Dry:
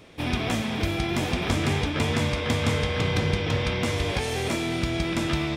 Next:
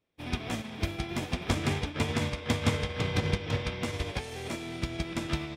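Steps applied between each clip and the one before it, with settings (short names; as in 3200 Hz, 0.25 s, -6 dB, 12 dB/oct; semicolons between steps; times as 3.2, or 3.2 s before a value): upward expander 2.5:1, over -41 dBFS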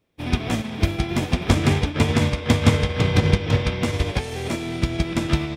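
low shelf 410 Hz +4.5 dB; gain +7.5 dB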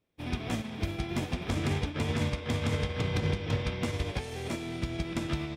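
limiter -11 dBFS, peak gain reduction 9.5 dB; gain -8.5 dB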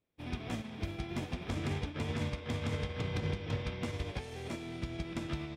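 high shelf 7700 Hz -5 dB; gain -5.5 dB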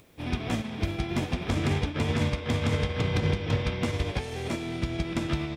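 upward compressor, threshold -51 dBFS; gain +9 dB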